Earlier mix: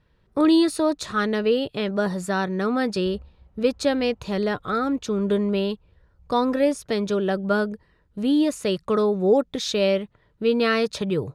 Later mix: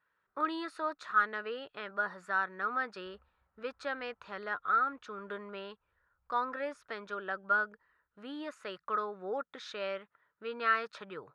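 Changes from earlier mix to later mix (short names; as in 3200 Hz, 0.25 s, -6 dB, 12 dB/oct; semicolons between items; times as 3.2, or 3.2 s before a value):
background: remove HPF 220 Hz 6 dB/oct; master: add band-pass 1400 Hz, Q 3.2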